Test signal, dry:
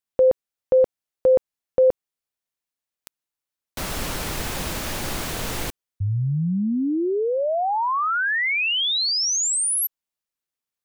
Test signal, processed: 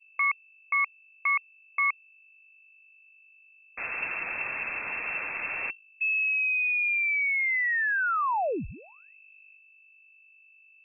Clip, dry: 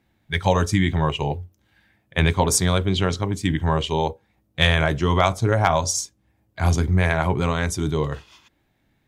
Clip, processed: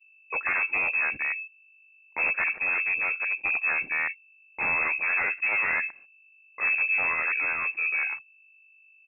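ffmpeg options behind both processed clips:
-af "agate=range=-7dB:threshold=-44dB:ratio=16:release=58:detection=peak,aeval=exprs='val(0)+0.00355*(sin(2*PI*50*n/s)+sin(2*PI*2*50*n/s)/2+sin(2*PI*3*50*n/s)/3+sin(2*PI*4*50*n/s)/4+sin(2*PI*5*50*n/s)/5)':c=same,aresample=16000,aeval=exprs='0.168*(abs(mod(val(0)/0.168+3,4)-2)-1)':c=same,aresample=44100,anlmdn=0.631,lowpass=f=2.3k:t=q:w=0.5098,lowpass=f=2.3k:t=q:w=0.6013,lowpass=f=2.3k:t=q:w=0.9,lowpass=f=2.3k:t=q:w=2.563,afreqshift=-2700,volume=-4dB"

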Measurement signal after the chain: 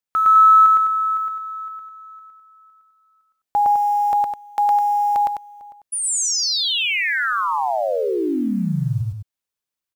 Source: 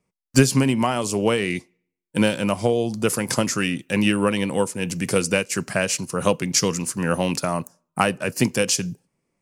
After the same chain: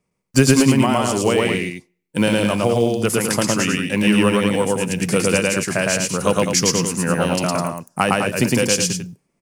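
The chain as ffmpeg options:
-af "acrusher=bits=9:mode=log:mix=0:aa=0.000001,aecho=1:1:110.8|207:0.891|0.447,volume=1dB"

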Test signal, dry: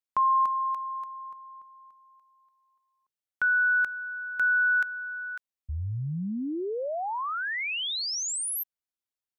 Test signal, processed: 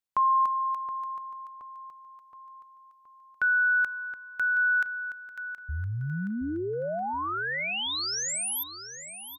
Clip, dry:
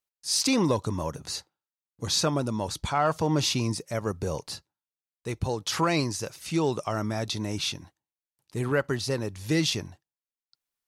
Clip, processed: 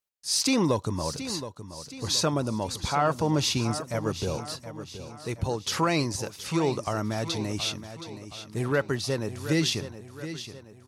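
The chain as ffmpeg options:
-af "aecho=1:1:722|1444|2166|2888|3610:0.251|0.121|0.0579|0.0278|0.0133"

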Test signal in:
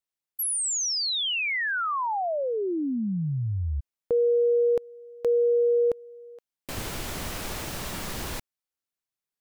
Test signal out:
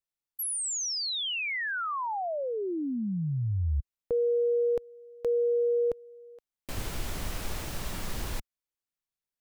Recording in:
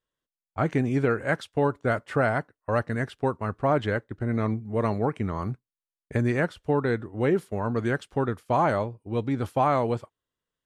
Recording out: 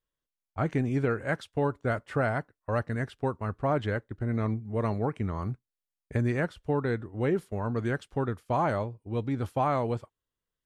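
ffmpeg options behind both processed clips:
-af "lowshelf=f=73:g=11,volume=-4.5dB"

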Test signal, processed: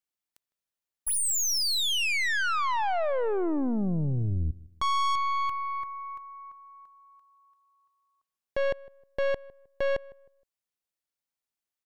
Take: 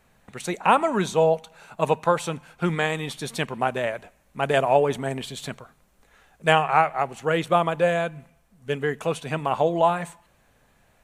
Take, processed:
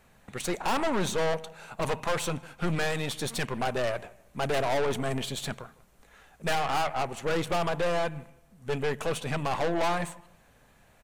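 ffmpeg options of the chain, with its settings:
-filter_complex "[0:a]aeval=exprs='(tanh(28.2*val(0)+0.6)-tanh(0.6))/28.2':c=same,asplit=2[a][b];[b]adelay=156,lowpass=f=1.2k:p=1,volume=-20dB,asplit=2[c][d];[d]adelay=156,lowpass=f=1.2k:p=1,volume=0.32,asplit=2[e][f];[f]adelay=156,lowpass=f=1.2k:p=1,volume=0.32[g];[a][c][e][g]amix=inputs=4:normalize=0,volume=4dB"

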